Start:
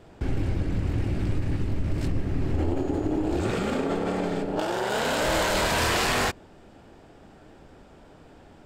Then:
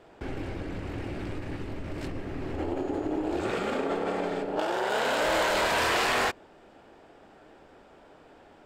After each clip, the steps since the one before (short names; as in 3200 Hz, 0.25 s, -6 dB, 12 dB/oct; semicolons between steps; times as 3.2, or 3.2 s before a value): tone controls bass -12 dB, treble -6 dB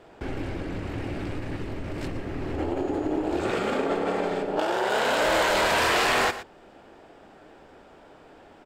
echo 0.117 s -13.5 dB; gain +3 dB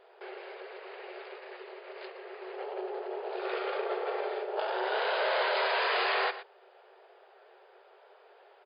FFT band-pass 360–5000 Hz; gain -6 dB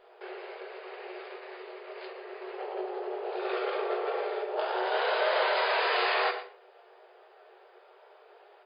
shoebox room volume 55 m³, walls mixed, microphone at 0.45 m